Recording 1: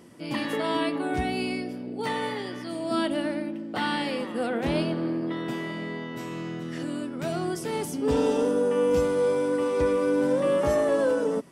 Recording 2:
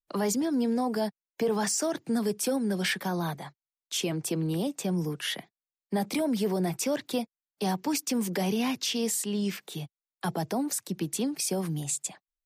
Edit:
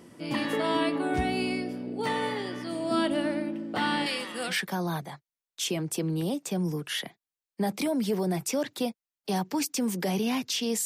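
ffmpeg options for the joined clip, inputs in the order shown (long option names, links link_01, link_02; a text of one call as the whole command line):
ffmpeg -i cue0.wav -i cue1.wav -filter_complex "[0:a]asettb=1/sr,asplit=3[link_01][link_02][link_03];[link_01]atrim=end=4.064[link_04];[link_02]atrim=start=4.06:end=4.55,asetpts=PTS-STARTPTS,afade=type=in:duration=0.004:curve=qsin,afade=type=out:start_time=0.486:duration=0.004:curve=qsin,tiltshelf=frequency=1300:gain=-9.5[link_05];[link_03]atrim=start=4.546[link_06];[link_04][link_05]acrossfade=duration=0.004:curve1=hsin:curve2=qsin[link_07];[link_07][link_06]acrossfade=duration=0.004:curve1=qsin:curve2=hsin,apad=whole_dur=10.85,atrim=end=10.85,atrim=end=4.55,asetpts=PTS-STARTPTS[link_08];[1:a]atrim=start=2.8:end=9.18,asetpts=PTS-STARTPTS[link_09];[link_08][link_09]acrossfade=duration=0.08:curve1=tri:curve2=tri" out.wav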